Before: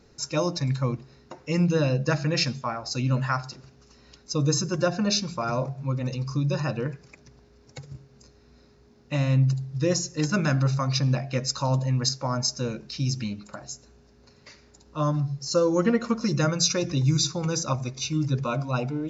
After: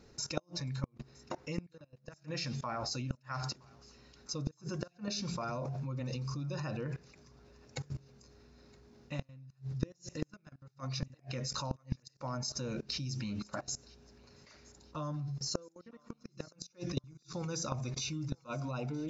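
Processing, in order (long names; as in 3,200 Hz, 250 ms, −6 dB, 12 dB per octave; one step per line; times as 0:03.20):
output level in coarse steps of 22 dB
gate with flip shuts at −27 dBFS, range −36 dB
feedback echo with a high-pass in the loop 968 ms, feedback 44%, high-pass 1,000 Hz, level −23 dB
level +6.5 dB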